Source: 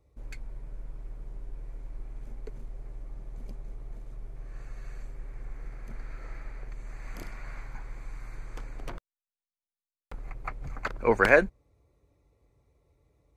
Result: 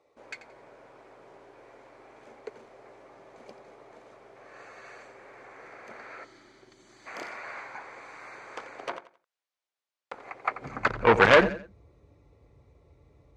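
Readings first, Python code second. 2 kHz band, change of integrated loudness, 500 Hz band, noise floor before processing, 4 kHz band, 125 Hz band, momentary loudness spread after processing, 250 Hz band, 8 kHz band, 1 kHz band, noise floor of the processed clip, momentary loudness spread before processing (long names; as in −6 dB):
+2.5 dB, +6.0 dB, +3.0 dB, below −85 dBFS, +12.0 dB, +0.5 dB, 26 LU, +3.0 dB, +2.5 dB, +6.5 dB, below −85 dBFS, 18 LU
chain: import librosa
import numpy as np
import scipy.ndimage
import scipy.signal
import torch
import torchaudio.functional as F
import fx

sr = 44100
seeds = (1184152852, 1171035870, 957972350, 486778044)

p1 = 10.0 ** (-16.5 / 20.0) * (np.abs((x / 10.0 ** (-16.5 / 20.0) + 3.0) % 4.0 - 2.0) - 1.0)
p2 = x + F.gain(torch.from_numpy(p1), -3.0).numpy()
p3 = fx.air_absorb(p2, sr, metres=93.0)
p4 = p3 + fx.echo_feedback(p3, sr, ms=87, feedback_pct=28, wet_db=-14, dry=0)
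p5 = fx.spec_box(p4, sr, start_s=6.24, length_s=0.83, low_hz=390.0, high_hz=2900.0, gain_db=-15)
p6 = fx.filter_sweep_highpass(p5, sr, from_hz=530.0, to_hz=66.0, start_s=10.47, end_s=11.02, q=0.95)
p7 = fx.transformer_sat(p6, sr, knee_hz=1800.0)
y = F.gain(torch.from_numpy(p7), 4.5).numpy()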